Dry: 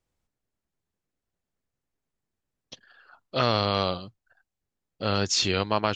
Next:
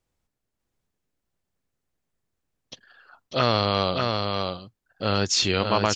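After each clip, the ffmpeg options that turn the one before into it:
-af "aecho=1:1:595:0.631,volume=1.26"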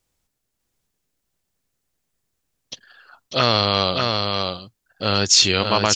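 -af "highshelf=f=2900:g=9,volume=1.26"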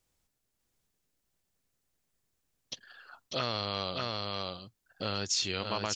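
-af "acompressor=threshold=0.02:ratio=2,volume=0.631"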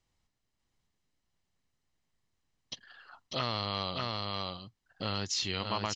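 -af "lowpass=5500,aecho=1:1:1:0.31"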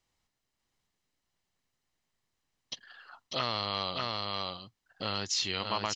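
-af "lowshelf=f=250:g=-7.5,volume=1.26"

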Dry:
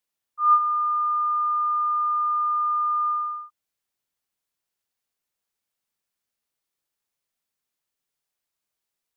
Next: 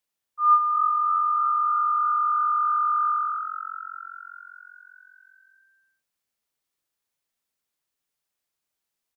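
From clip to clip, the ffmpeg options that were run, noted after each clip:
-filter_complex "[0:a]asplit=9[s0][s1][s2][s3][s4][s5][s6][s7][s8];[s1]adelay=316,afreqshift=45,volume=0.316[s9];[s2]adelay=632,afreqshift=90,volume=0.2[s10];[s3]adelay=948,afreqshift=135,volume=0.126[s11];[s4]adelay=1264,afreqshift=180,volume=0.0794[s12];[s5]adelay=1580,afreqshift=225,volume=0.0495[s13];[s6]adelay=1896,afreqshift=270,volume=0.0313[s14];[s7]adelay=2212,afreqshift=315,volume=0.0197[s15];[s8]adelay=2528,afreqshift=360,volume=0.0124[s16];[s0][s9][s10][s11][s12][s13][s14][s15][s16]amix=inputs=9:normalize=0"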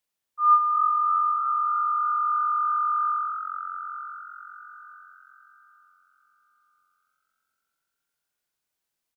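-filter_complex "[0:a]asplit=2[s0][s1];[s1]adelay=911,lowpass=f=1200:p=1,volume=0.335,asplit=2[s2][s3];[s3]adelay=911,lowpass=f=1200:p=1,volume=0.41,asplit=2[s4][s5];[s5]adelay=911,lowpass=f=1200:p=1,volume=0.41,asplit=2[s6][s7];[s7]adelay=911,lowpass=f=1200:p=1,volume=0.41[s8];[s0][s2][s4][s6][s8]amix=inputs=5:normalize=0"

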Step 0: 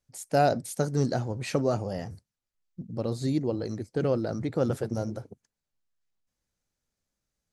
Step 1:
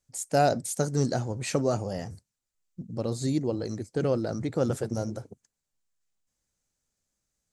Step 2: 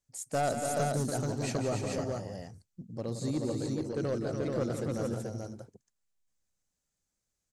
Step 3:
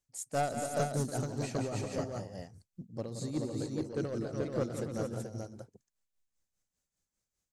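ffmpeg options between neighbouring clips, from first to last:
-af "equalizer=f=7500:t=o:w=0.74:g=8.5"
-af "aeval=exprs='clip(val(0),-1,0.106)':c=same,aecho=1:1:172|287|360|432:0.376|0.501|0.211|0.668,volume=0.501"
-af "tremolo=f=5:d=0.62"

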